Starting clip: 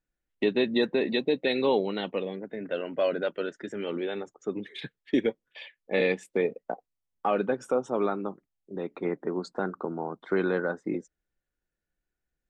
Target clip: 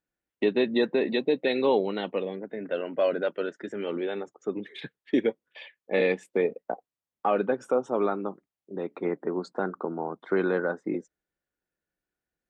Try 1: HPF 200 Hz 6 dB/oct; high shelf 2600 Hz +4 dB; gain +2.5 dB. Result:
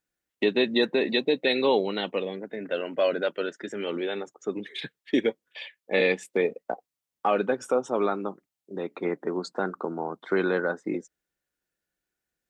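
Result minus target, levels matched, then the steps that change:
4000 Hz band +6.5 dB
change: high shelf 2600 Hz -7 dB

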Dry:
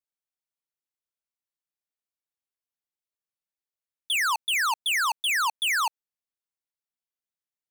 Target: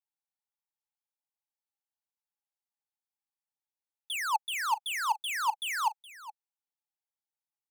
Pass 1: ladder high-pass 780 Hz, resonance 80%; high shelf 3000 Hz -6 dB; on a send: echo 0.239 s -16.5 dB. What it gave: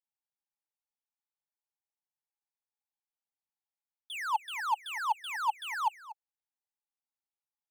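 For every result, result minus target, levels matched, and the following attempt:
echo 0.18 s early; 8000 Hz band -7.0 dB
ladder high-pass 780 Hz, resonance 80%; high shelf 3000 Hz -6 dB; on a send: echo 0.419 s -16.5 dB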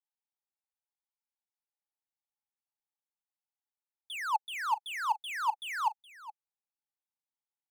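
8000 Hz band -7.0 dB
ladder high-pass 780 Hz, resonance 80%; high shelf 3000 Hz +5 dB; on a send: echo 0.419 s -16.5 dB

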